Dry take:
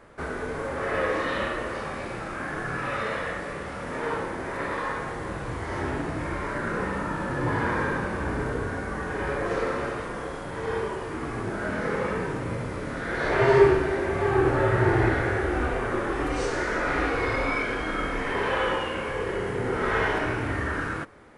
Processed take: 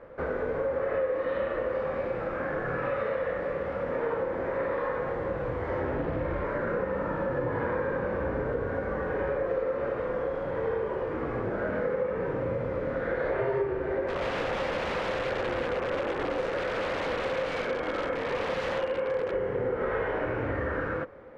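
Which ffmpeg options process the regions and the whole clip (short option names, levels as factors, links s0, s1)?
-filter_complex "[0:a]asettb=1/sr,asplit=3[s0][s1][s2];[s0]atrim=end=5.954[s3];[s1]atrim=start=5.95:end=6.44,asetpts=PTS-STARTPTS,afade=t=in:d=0.004:c=qsin,afade=t=out:st=0.486:d=0.004:c=qsin,lowshelf=f=130:g=5.5,acrusher=bits=7:dc=4:mix=0:aa=0.000001,acrossover=split=4000[s4][s5];[s5]acompressor=threshold=0.001:ratio=4:attack=1:release=60[s6];[s4][s6]amix=inputs=2:normalize=0[s7];[s2]atrim=start=6.436[s8];[s3][s7]acrossfade=d=0.004:c1=hsin:c2=qsin[s9];[s9][s8]acrossfade=d=0.004:c1=qsin:c2=hsin,asettb=1/sr,asplit=3[s10][s11][s12];[s10]atrim=end=14.074[s13];[s11]atrim=start=14.07:end=19.33,asetpts=PTS-STARTPTS,afade=t=in:d=0.004:c=qsin,afade=t=out:st=5.256:d=0.004:c=qsin,highpass=f=160:p=1,aeval=exprs='(mod(13.3*val(0)+1,2)-1)/13.3':c=same[s14];[s12]atrim=start=19.326[s15];[s13][s14]acrossfade=d=0.004:c1=hsin:c2=qsin[s16];[s16][s15]acrossfade=d=0.004:c1=qsin:c2=hsin,lowpass=2200,equalizer=f=520:t=o:w=0.3:g=14.5,acompressor=threshold=0.0562:ratio=6,volume=0.891"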